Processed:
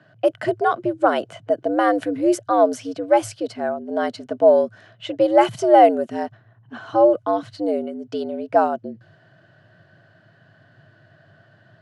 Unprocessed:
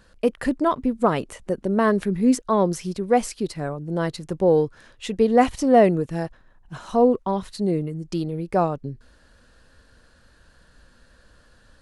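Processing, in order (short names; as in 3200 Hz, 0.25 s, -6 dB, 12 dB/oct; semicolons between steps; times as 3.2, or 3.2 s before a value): low-pass opened by the level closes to 2900 Hz, open at -15 dBFS; small resonant body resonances 570/1400/2900 Hz, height 10 dB, ringing for 25 ms; frequency shift +96 Hz; gain -1 dB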